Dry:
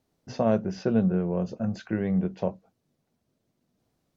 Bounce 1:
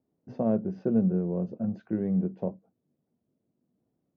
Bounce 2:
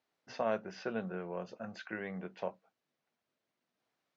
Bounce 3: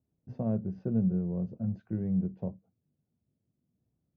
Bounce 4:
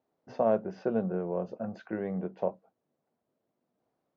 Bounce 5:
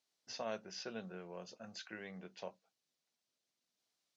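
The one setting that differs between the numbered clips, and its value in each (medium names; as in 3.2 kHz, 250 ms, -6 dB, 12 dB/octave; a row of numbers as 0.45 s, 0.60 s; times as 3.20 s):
band-pass filter, frequency: 260 Hz, 1.9 kHz, 100 Hz, 710 Hz, 4.8 kHz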